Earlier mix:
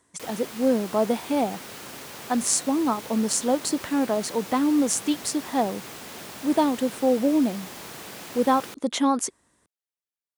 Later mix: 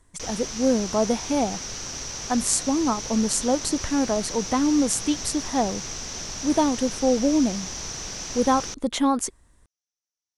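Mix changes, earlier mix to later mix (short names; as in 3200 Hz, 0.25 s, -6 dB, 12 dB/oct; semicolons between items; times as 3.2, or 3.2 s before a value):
background: add synth low-pass 5900 Hz, resonance Q 10; master: remove HPF 180 Hz 12 dB/oct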